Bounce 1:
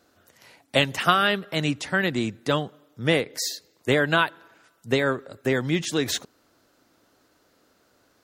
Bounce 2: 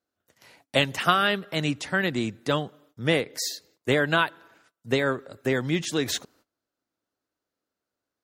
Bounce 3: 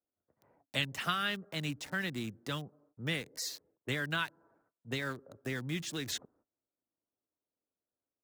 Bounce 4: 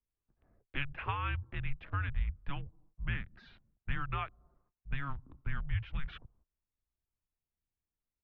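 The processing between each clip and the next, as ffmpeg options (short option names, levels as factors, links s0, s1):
-af "agate=range=0.0794:threshold=0.00158:ratio=16:detection=peak,volume=0.841"
-filter_complex "[0:a]acrossover=split=260|1200[s0][s1][s2];[s1]acompressor=threshold=0.0158:ratio=6[s3];[s2]aeval=exprs='val(0)*gte(abs(val(0)),0.0119)':c=same[s4];[s0][s3][s4]amix=inputs=3:normalize=0,volume=0.376"
-af "lowshelf=f=380:t=q:w=1.5:g=11,highpass=f=210:t=q:w=0.5412,highpass=f=210:t=q:w=1.307,lowpass=f=3000:t=q:w=0.5176,lowpass=f=3000:t=q:w=0.7071,lowpass=f=3000:t=q:w=1.932,afreqshift=-280,volume=0.75"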